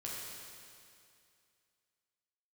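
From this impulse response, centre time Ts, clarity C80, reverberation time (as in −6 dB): 139 ms, 0.0 dB, 2.4 s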